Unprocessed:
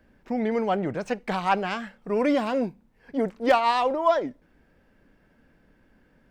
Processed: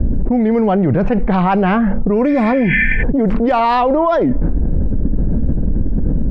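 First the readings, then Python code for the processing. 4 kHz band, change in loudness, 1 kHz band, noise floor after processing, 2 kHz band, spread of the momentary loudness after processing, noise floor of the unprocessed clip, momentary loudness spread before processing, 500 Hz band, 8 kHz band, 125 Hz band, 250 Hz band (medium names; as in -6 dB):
+2.0 dB, +10.0 dB, +8.0 dB, -16 dBFS, +13.0 dB, 6 LU, -63 dBFS, 11 LU, +9.0 dB, no reading, +22.5 dB, +15.0 dB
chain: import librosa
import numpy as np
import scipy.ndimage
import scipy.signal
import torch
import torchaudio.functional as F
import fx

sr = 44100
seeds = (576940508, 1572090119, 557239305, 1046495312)

y = fx.riaa(x, sr, side='playback')
y = fx.spec_repair(y, sr, seeds[0], start_s=2.31, length_s=0.69, low_hz=1500.0, high_hz=3400.0, source='before')
y = fx.env_lowpass(y, sr, base_hz=390.0, full_db=-14.5)
y = fx.env_flatten(y, sr, amount_pct=100)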